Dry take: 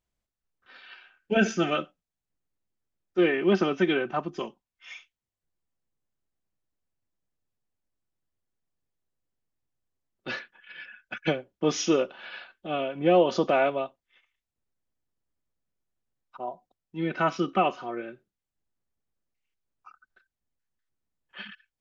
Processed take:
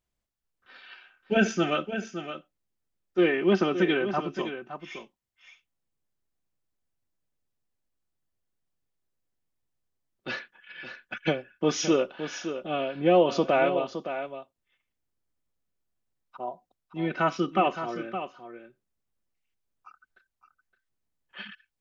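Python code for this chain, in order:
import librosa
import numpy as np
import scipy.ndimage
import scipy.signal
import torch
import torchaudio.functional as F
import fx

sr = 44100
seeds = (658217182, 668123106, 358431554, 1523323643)

y = x + 10.0 ** (-10.0 / 20.0) * np.pad(x, (int(566 * sr / 1000.0), 0))[:len(x)]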